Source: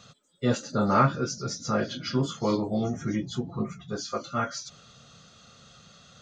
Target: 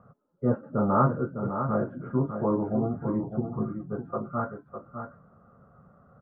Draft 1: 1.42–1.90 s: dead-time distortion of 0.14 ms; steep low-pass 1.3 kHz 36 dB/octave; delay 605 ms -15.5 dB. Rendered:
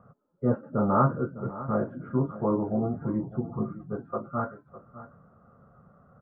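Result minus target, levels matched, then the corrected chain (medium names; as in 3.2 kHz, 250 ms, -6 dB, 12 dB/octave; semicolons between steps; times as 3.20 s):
echo-to-direct -7.5 dB
1.42–1.90 s: dead-time distortion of 0.14 ms; steep low-pass 1.3 kHz 36 dB/octave; delay 605 ms -8 dB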